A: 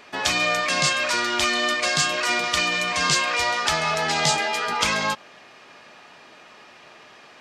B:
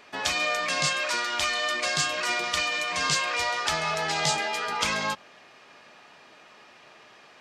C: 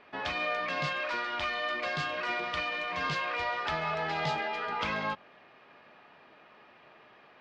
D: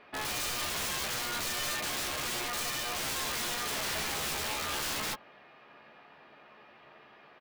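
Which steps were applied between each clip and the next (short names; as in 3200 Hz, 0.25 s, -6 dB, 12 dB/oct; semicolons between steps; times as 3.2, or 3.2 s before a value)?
notches 60/120/180/240/300/360 Hz; gain -4.5 dB
air absorption 330 m; gain -2 dB
wrapped overs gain 30 dB; doubler 14 ms -7 dB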